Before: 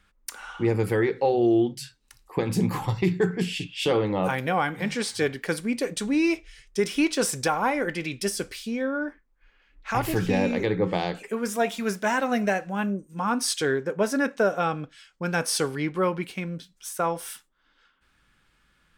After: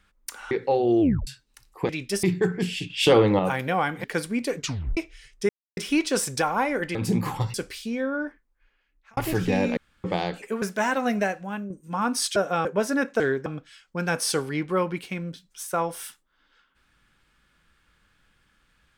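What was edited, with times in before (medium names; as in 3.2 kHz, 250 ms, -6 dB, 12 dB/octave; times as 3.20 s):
0.51–1.05 s: delete
1.55 s: tape stop 0.26 s
2.43–3.02 s: swap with 8.01–8.35 s
3.69–4.18 s: gain +6 dB
4.83–5.38 s: delete
5.90 s: tape stop 0.41 s
6.83 s: insert silence 0.28 s
9.03–9.98 s: fade out
10.58–10.85 s: room tone
11.43–11.88 s: delete
12.44–12.96 s: fade out, to -8.5 dB
13.62–13.88 s: swap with 14.43–14.72 s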